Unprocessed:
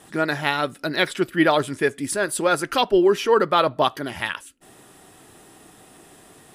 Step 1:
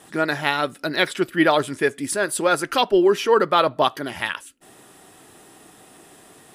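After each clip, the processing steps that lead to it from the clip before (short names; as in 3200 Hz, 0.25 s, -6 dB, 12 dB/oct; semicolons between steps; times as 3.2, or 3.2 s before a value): low shelf 110 Hz -7.5 dB; gain +1 dB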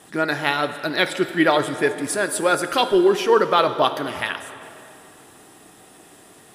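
plate-style reverb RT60 2.7 s, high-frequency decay 0.8×, DRR 9.5 dB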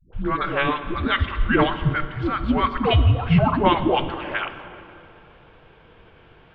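mistuned SSB -290 Hz 240–3500 Hz; dispersion highs, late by 0.129 s, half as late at 360 Hz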